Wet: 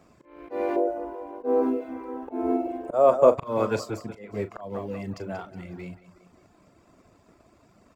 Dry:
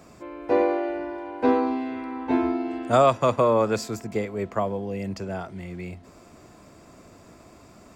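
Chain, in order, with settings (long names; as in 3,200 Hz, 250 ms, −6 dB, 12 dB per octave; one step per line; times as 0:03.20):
mu-law and A-law mismatch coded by A
high-shelf EQ 4,700 Hz −6.5 dB
repeating echo 184 ms, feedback 44%, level −10.5 dB
volume swells 238 ms
0:00.76–0:03.38: graphic EQ with 10 bands 125 Hz −10 dB, 500 Hz +10 dB, 2,000 Hz −7 dB, 4,000 Hz −11 dB
reverb reduction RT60 0.69 s
double-tracking delay 39 ms −13 dB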